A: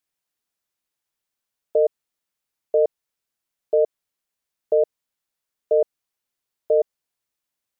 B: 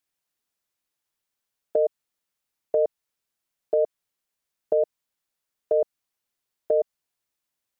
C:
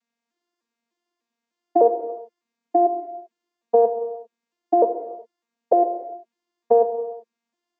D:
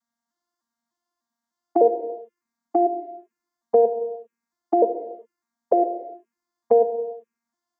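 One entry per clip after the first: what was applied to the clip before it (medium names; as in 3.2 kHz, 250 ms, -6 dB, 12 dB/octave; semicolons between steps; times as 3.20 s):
dynamic bell 440 Hz, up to -5 dB, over -28 dBFS, Q 1.4
vocoder on a broken chord bare fifth, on A#3, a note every 301 ms; reverberation, pre-delay 3 ms, DRR 7 dB; trim +8.5 dB
touch-sensitive phaser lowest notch 440 Hz, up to 1.2 kHz, full sweep at -23.5 dBFS; trim +2 dB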